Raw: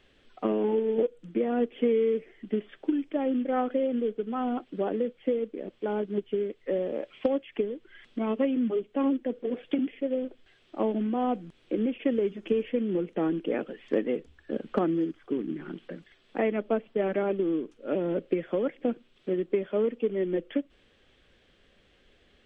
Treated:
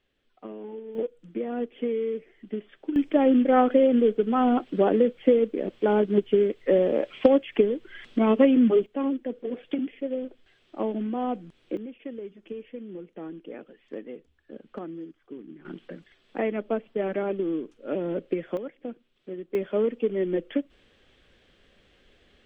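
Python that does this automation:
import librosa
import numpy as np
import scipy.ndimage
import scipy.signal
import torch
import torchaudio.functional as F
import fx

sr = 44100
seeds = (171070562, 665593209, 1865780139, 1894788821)

y = fx.gain(x, sr, db=fx.steps((0.0, -12.5), (0.95, -3.5), (2.96, 8.0), (8.86, -1.0), (11.77, -11.0), (15.65, -0.5), (18.57, -8.0), (19.55, 2.0)))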